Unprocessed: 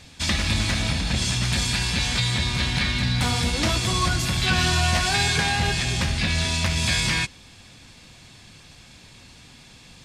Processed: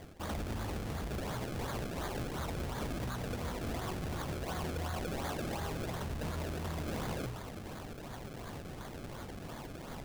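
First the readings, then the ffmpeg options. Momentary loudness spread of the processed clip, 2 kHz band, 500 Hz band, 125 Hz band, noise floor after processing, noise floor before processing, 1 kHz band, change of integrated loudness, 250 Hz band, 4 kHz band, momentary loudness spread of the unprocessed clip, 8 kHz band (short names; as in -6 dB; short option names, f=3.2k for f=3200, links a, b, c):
8 LU, -20.5 dB, -6.0 dB, -14.5 dB, -46 dBFS, -49 dBFS, -12.5 dB, -17.5 dB, -11.0 dB, -24.5 dB, 3 LU, -21.0 dB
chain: -af "bandreject=f=60:t=h:w=6,bandreject=f=120:t=h:w=6,bandreject=f=180:t=h:w=6,bandreject=f=240:t=h:w=6,areverse,acompressor=threshold=-40dB:ratio=4,areverse,acrusher=samples=32:mix=1:aa=0.000001:lfo=1:lforange=32:lforate=2.8,asoftclip=type=tanh:threshold=-35.5dB,volume=4dB"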